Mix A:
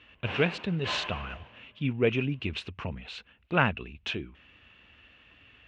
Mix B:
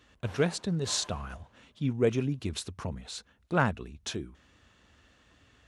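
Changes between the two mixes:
background −8.5 dB
master: remove low-pass with resonance 2,700 Hz, resonance Q 4.8

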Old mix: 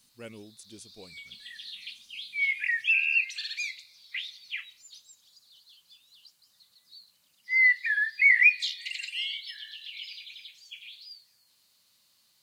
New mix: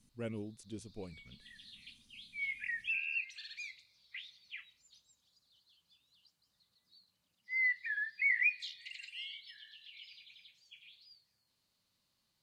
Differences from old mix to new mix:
background −8.5 dB
master: add spectral tilt −2.5 dB per octave

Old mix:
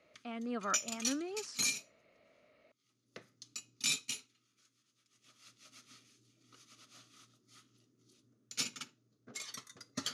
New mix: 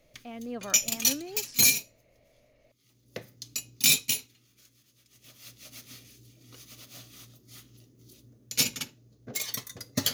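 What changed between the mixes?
background +10.5 dB
master: remove loudspeaker in its box 170–9,300 Hz, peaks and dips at 530 Hz −5 dB, 770 Hz −3 dB, 1,300 Hz +10 dB

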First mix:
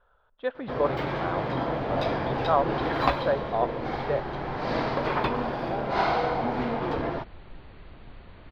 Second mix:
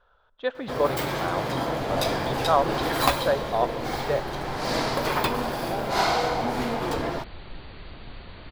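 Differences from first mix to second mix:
speech: send +6.0 dB
second sound +4.5 dB
master: remove high-frequency loss of the air 300 metres

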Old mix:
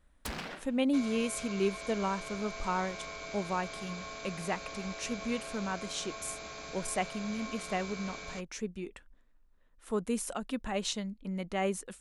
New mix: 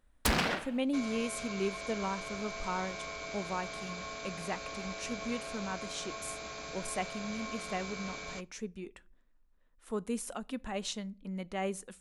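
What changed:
speech −4.5 dB
first sound +9.0 dB
reverb: on, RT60 0.45 s

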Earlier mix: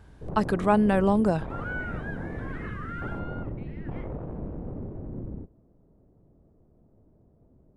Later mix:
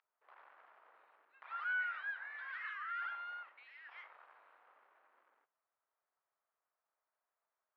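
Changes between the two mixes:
speech: muted
master: add high-pass filter 1,300 Hz 24 dB per octave

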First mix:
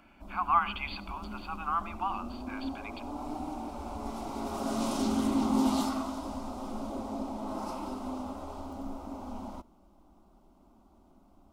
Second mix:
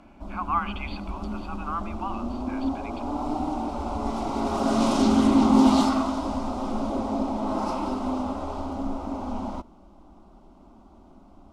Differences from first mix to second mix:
background +9.5 dB
master: add high-frequency loss of the air 59 metres

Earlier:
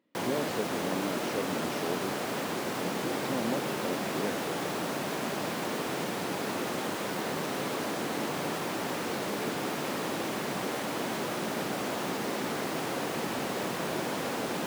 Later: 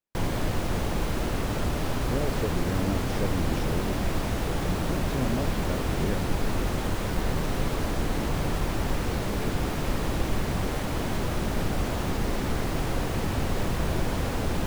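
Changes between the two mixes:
speech: entry +1.85 s
master: remove Bessel high-pass filter 260 Hz, order 4

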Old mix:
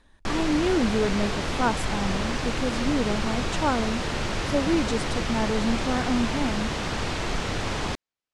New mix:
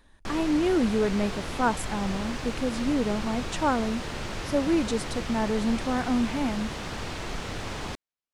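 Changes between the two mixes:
background −6.0 dB
master: remove low-pass filter 9,800 Hz 12 dB per octave

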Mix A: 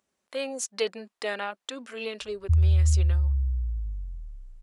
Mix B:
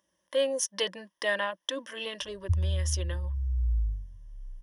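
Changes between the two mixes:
background −3.0 dB
master: add EQ curve with evenly spaced ripples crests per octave 1.2, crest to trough 14 dB

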